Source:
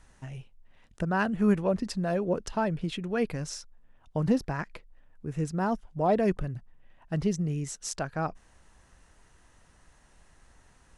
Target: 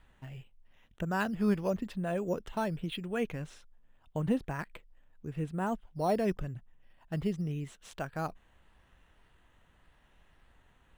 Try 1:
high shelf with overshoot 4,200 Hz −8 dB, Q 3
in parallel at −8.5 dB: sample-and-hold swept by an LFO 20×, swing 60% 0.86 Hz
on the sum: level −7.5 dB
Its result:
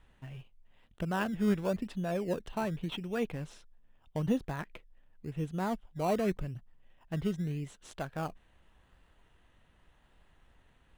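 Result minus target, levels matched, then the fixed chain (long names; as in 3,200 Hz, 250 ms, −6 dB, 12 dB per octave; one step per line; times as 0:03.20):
sample-and-hold swept by an LFO: distortion +9 dB
high shelf with overshoot 4,200 Hz −8 dB, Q 3
in parallel at −8.5 dB: sample-and-hold swept by an LFO 7×, swing 60% 0.86 Hz
on the sum: level −7.5 dB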